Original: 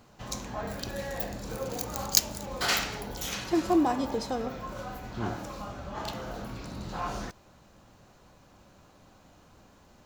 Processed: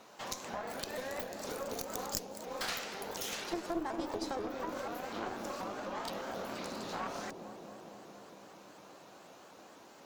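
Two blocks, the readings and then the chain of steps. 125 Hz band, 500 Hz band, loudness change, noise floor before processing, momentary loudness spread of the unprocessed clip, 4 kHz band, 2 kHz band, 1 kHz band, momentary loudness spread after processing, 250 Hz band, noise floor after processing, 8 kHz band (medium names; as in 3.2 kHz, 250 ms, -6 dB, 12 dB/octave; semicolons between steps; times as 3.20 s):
-13.5 dB, -4.5 dB, -8.0 dB, -58 dBFS, 15 LU, -8.5 dB, -6.0 dB, -5.5 dB, 17 LU, -10.0 dB, -56 dBFS, -10.0 dB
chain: high-pass 380 Hz 12 dB/octave; compression 4:1, threshold -43 dBFS, peak gain reduction 22.5 dB; feedback echo behind a low-pass 230 ms, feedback 77%, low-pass 480 Hz, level -3 dB; Chebyshev shaper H 6 -15 dB, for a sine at -19.5 dBFS; vibrato with a chosen wave saw up 4.1 Hz, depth 160 cents; trim +4 dB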